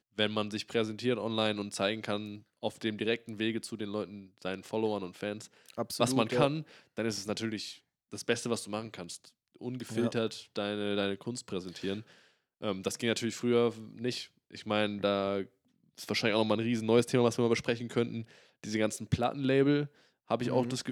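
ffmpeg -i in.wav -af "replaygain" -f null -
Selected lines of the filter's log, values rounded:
track_gain = +11.0 dB
track_peak = 0.199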